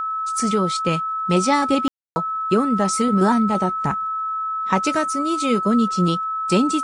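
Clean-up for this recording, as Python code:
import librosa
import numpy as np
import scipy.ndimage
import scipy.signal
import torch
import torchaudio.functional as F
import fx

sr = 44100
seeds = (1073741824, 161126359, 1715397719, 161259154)

y = fx.fix_declick_ar(x, sr, threshold=6.5)
y = fx.notch(y, sr, hz=1300.0, q=30.0)
y = fx.fix_ambience(y, sr, seeds[0], print_start_s=3.95, print_end_s=4.45, start_s=1.88, end_s=2.16)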